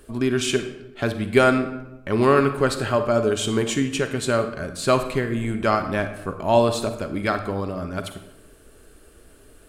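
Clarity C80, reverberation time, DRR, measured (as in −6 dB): 12.0 dB, 0.90 s, 8.0 dB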